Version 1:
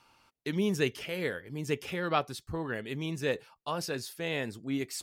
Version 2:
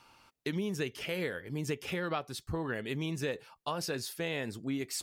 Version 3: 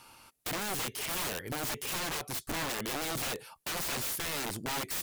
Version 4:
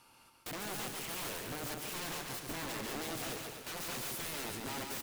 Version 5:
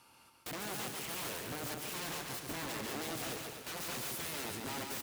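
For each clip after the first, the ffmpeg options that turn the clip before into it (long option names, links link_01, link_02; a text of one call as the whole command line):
ffmpeg -i in.wav -af "acompressor=threshold=-34dB:ratio=6,volume=3dB" out.wav
ffmpeg -i in.wav -af "equalizer=frequency=11000:width_type=o:width=0.83:gain=13.5,aeval=exprs='(mod(47.3*val(0)+1,2)-1)/47.3':channel_layout=same,volume=4dB" out.wav
ffmpeg -i in.wav -af "equalizer=frequency=280:width_type=o:width=2.2:gain=2.5,aecho=1:1:140|252|341.6|413.3|470.6:0.631|0.398|0.251|0.158|0.1,volume=-8dB" out.wav
ffmpeg -i in.wav -af "highpass=42" out.wav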